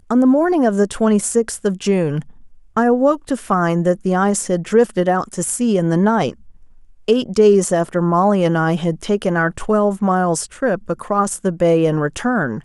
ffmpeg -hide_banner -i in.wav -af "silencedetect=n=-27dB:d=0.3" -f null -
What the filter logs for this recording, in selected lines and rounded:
silence_start: 2.22
silence_end: 2.77 | silence_duration: 0.55
silence_start: 6.32
silence_end: 7.08 | silence_duration: 0.77